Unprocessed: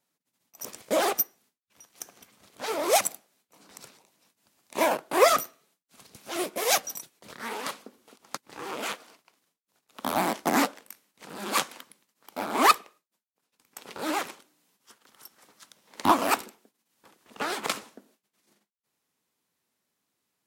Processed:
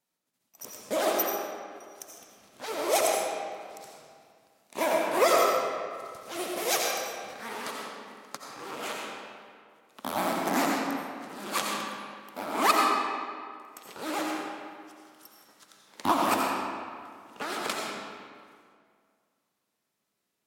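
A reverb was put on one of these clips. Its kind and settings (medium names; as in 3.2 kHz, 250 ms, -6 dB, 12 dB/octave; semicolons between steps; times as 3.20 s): algorithmic reverb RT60 2.1 s, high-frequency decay 0.7×, pre-delay 45 ms, DRR -1.5 dB; trim -4.5 dB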